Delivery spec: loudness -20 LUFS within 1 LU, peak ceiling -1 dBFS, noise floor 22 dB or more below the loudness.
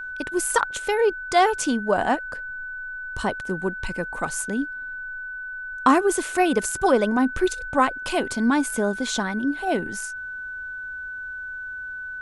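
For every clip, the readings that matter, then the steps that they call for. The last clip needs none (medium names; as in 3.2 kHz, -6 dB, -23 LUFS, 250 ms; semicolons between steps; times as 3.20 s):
steady tone 1.5 kHz; tone level -31 dBFS; loudness -24.5 LUFS; peak level -4.0 dBFS; loudness target -20.0 LUFS
-> band-stop 1.5 kHz, Q 30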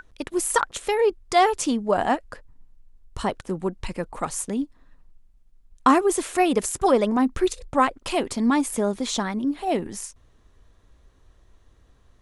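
steady tone not found; loudness -23.5 LUFS; peak level -3.5 dBFS; loudness target -20.0 LUFS
-> trim +3.5 dB; peak limiter -1 dBFS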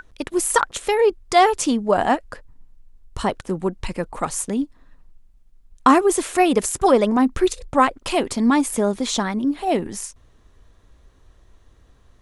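loudness -20.0 LUFS; peak level -1.0 dBFS; noise floor -54 dBFS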